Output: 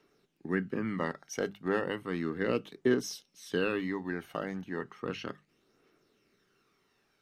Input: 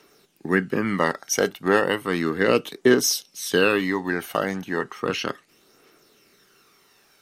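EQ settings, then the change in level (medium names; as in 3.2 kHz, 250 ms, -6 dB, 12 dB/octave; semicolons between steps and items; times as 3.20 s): low-pass 1.5 kHz 6 dB/octave; peaking EQ 750 Hz -6 dB 2.6 oct; hum notches 50/100/150/200 Hz; -6.0 dB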